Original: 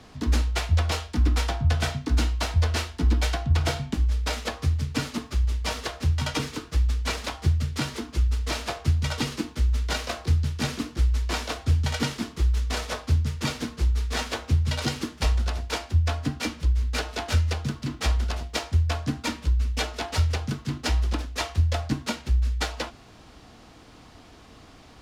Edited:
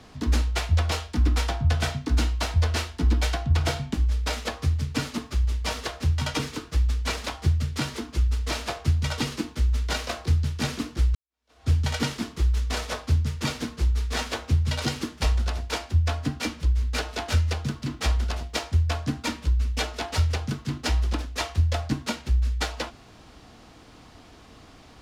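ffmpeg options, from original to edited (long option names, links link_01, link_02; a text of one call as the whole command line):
ffmpeg -i in.wav -filter_complex "[0:a]asplit=2[link_01][link_02];[link_01]atrim=end=11.15,asetpts=PTS-STARTPTS,afade=type=out:start_time=11.146:duration=0.004:curve=hsin[link_03];[link_02]atrim=start=11.15,asetpts=PTS-STARTPTS,afade=type=in:duration=0.53:curve=exp[link_04];[link_03][link_04]concat=n=2:v=0:a=1" out.wav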